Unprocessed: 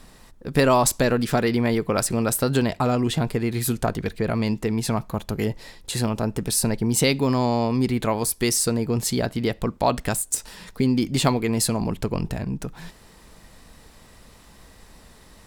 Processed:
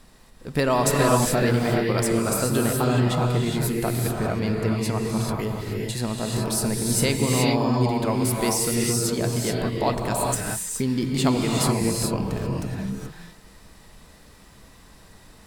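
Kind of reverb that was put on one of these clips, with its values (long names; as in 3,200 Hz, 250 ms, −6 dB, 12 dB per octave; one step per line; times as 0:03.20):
reverb whose tail is shaped and stops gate 450 ms rising, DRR −1.5 dB
level −4 dB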